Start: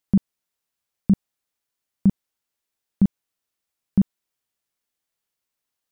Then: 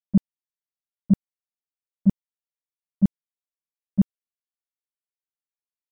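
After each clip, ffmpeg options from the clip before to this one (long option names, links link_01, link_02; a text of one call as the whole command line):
ffmpeg -i in.wav -af "agate=range=-24dB:threshold=-15dB:ratio=16:detection=peak,volume=1.5dB" out.wav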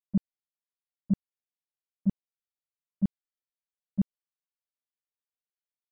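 ffmpeg -i in.wav -af "aresample=11025,aresample=44100,volume=-8dB" out.wav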